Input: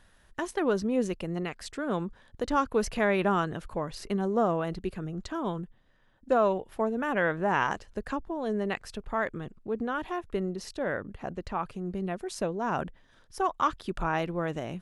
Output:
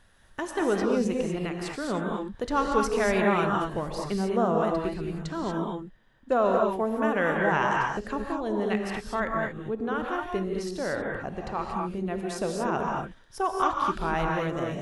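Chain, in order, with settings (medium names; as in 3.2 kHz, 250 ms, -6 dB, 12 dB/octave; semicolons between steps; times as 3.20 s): gated-style reverb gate 260 ms rising, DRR 0 dB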